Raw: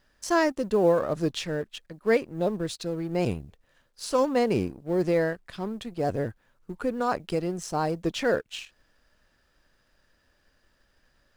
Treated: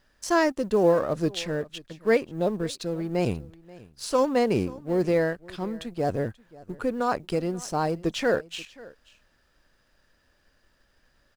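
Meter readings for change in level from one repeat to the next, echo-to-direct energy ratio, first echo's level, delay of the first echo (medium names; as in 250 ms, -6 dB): no regular repeats, -21.5 dB, -21.5 dB, 534 ms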